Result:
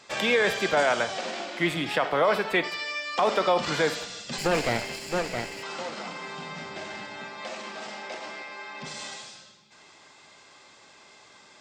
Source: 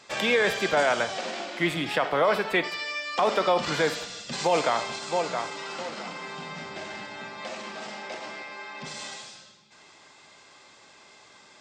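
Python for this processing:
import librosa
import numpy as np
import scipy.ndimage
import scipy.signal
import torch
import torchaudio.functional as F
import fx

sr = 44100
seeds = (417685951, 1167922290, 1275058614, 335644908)

y = fx.lower_of_two(x, sr, delay_ms=0.41, at=(4.38, 5.63))
y = fx.low_shelf(y, sr, hz=100.0, db=-11.0, at=(7.25, 8.67))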